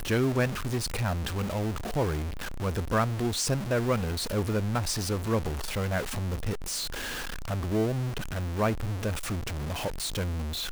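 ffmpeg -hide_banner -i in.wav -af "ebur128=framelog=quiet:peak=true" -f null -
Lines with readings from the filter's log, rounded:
Integrated loudness:
  I:         -30.0 LUFS
  Threshold: -40.0 LUFS
Loudness range:
  LRA:         2.5 LU
  Threshold: -49.9 LUFS
  LRA low:   -31.1 LUFS
  LRA high:  -28.6 LUFS
True peak:
  Peak:      -11.7 dBFS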